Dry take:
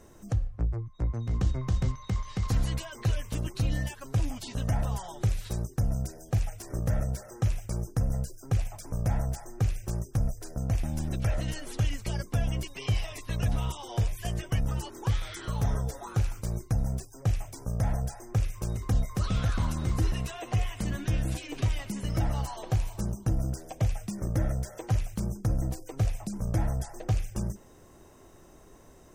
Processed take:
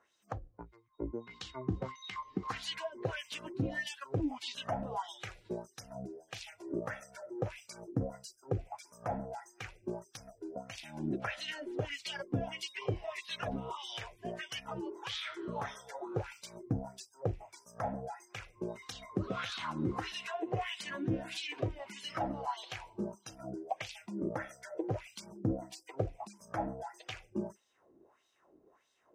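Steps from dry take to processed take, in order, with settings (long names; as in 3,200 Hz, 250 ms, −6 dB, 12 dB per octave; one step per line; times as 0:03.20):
noise reduction from a noise print of the clip's start 12 dB
LFO wah 1.6 Hz 300–3,900 Hz, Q 2.5
level +8.5 dB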